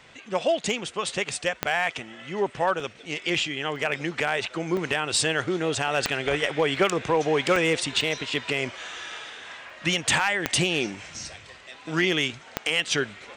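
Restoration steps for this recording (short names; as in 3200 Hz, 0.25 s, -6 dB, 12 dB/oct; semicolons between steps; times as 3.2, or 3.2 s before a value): clip repair -13 dBFS; de-click; interpolate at 2.8/3.76/4.77/5.88/6.76/7.56/8.01/9.7, 1.8 ms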